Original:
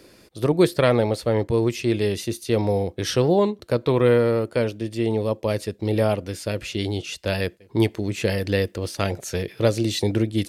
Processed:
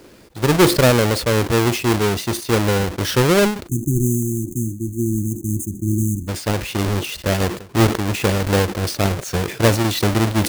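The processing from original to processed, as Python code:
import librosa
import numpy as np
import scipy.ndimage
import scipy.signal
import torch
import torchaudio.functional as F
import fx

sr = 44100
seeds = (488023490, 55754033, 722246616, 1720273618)

y = fx.halfwave_hold(x, sr)
y = fx.brickwall_bandstop(y, sr, low_hz=370.0, high_hz=6100.0, at=(3.67, 6.27), fade=0.02)
y = fx.sustainer(y, sr, db_per_s=110.0)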